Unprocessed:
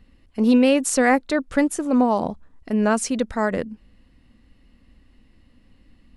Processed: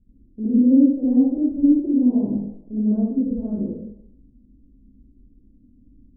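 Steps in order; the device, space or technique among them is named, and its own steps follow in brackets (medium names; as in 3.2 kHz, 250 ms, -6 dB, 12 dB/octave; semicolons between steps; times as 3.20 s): next room (low-pass 350 Hz 24 dB/octave; reverberation RT60 0.80 s, pre-delay 51 ms, DRR -11 dB); trim -8 dB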